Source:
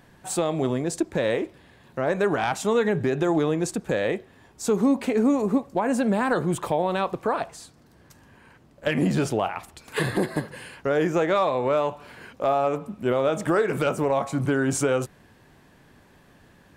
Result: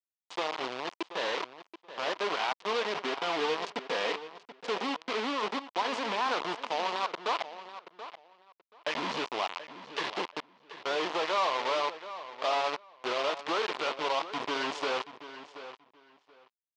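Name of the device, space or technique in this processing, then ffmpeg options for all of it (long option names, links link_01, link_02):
hand-held game console: -filter_complex "[0:a]asettb=1/sr,asplit=3[link_01][link_02][link_03];[link_01]atrim=end=2.974[link_04];[link_02]atrim=start=2.97:end=4.68,asetpts=PTS-STARTPTS,afade=type=in:duration=0.004:curve=qsin,afade=type=out:start_time=1.706:duration=0.004:curve=qsin,aecho=1:1:4.3:0.67,atrim=end_sample=75411[link_05];[link_03]atrim=start=4.676[link_06];[link_04][link_05]acrossfade=duration=0.004:curve1=hsin:curve2=qsin[link_07];[link_07][link_06]acrossfade=duration=0.004:curve1=qsin:curve2=hsin,acrusher=bits=3:mix=0:aa=0.000001,highpass=480,equalizer=frequency=550:width_type=q:width=4:gain=-3,equalizer=frequency=1000:width_type=q:width=4:gain=6,equalizer=frequency=1600:width_type=q:width=4:gain=-4,equalizer=frequency=3000:width_type=q:width=4:gain=3,lowpass=frequency=4900:width=0.5412,lowpass=frequency=4900:width=1.3066,asplit=2[link_08][link_09];[link_09]adelay=730,lowpass=frequency=4700:poles=1,volume=-13dB,asplit=2[link_10][link_11];[link_11]adelay=730,lowpass=frequency=4700:poles=1,volume=0.19[link_12];[link_08][link_10][link_12]amix=inputs=3:normalize=0,volume=-6.5dB"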